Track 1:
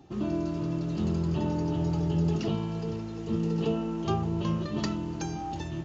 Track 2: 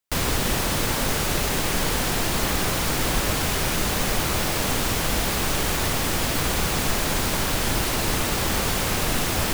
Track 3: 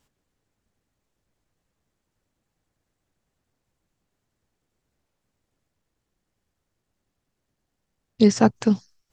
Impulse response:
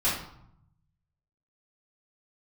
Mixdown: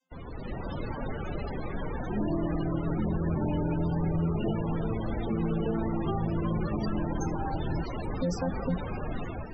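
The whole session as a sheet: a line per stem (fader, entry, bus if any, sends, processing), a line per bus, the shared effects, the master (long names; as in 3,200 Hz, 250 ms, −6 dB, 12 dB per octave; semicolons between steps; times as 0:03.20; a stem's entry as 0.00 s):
+0.5 dB, 2.00 s, no send, upward compression, threshold −40 dBFS
−16.5 dB, 0.00 s, no send, automatic gain control gain up to 15.5 dB
+0.5 dB, 0.00 s, no send, channel vocoder with a chord as carrier bare fifth, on F3; spectral tilt +4 dB per octave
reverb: not used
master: spectral peaks only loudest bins 32; brickwall limiter −20.5 dBFS, peak gain reduction 9.5 dB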